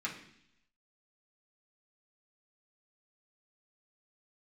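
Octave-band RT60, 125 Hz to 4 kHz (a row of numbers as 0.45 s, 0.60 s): 0.90 s, 0.85 s, 0.70 s, 0.65 s, 0.85 s, 0.90 s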